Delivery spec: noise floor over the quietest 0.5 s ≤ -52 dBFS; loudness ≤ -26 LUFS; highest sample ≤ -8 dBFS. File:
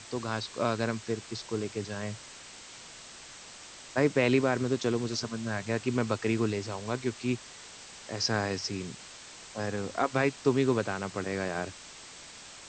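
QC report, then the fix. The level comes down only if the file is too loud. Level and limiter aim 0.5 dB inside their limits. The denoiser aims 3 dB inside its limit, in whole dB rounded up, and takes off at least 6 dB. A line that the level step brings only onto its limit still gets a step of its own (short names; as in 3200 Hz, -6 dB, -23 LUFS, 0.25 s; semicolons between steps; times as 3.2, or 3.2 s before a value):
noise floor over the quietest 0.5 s -48 dBFS: fail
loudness -31.0 LUFS: OK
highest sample -12.0 dBFS: OK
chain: denoiser 7 dB, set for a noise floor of -48 dBFS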